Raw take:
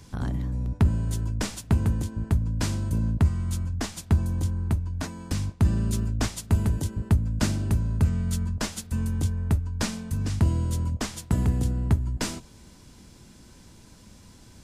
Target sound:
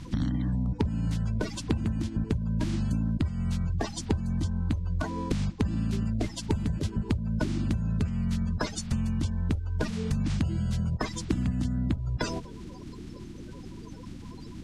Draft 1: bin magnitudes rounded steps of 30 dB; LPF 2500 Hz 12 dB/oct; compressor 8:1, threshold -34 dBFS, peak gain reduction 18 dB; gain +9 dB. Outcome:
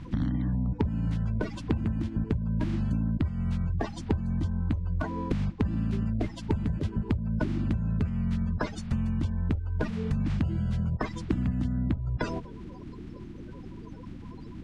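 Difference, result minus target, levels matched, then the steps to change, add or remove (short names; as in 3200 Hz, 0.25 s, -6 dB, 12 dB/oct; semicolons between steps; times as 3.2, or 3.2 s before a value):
4000 Hz band -7.0 dB
change: LPF 5400 Hz 12 dB/oct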